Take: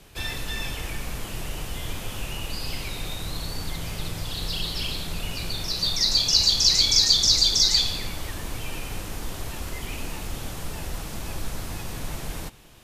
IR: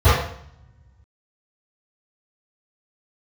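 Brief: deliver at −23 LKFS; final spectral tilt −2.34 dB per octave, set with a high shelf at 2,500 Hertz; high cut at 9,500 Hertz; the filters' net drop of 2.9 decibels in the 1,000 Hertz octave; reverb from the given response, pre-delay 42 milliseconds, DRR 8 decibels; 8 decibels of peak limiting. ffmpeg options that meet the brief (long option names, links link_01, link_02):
-filter_complex "[0:a]lowpass=9500,equalizer=frequency=1000:width_type=o:gain=-4.5,highshelf=frequency=2500:gain=4.5,alimiter=limit=-10.5dB:level=0:latency=1,asplit=2[link_01][link_02];[1:a]atrim=start_sample=2205,adelay=42[link_03];[link_02][link_03]afir=irnorm=-1:irlink=0,volume=-32.5dB[link_04];[link_01][link_04]amix=inputs=2:normalize=0,volume=0.5dB"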